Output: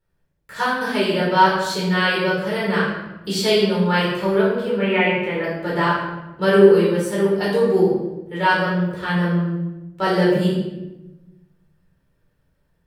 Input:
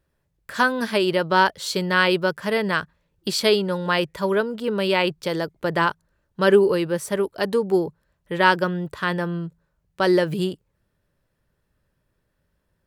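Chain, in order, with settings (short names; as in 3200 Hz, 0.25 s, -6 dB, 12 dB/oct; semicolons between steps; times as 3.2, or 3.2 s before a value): 4.77–5.44 resonant high shelf 3400 Hz -13.5 dB, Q 3; AGC gain up to 3.5 dB; shoebox room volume 460 m³, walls mixed, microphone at 4.3 m; gain -11 dB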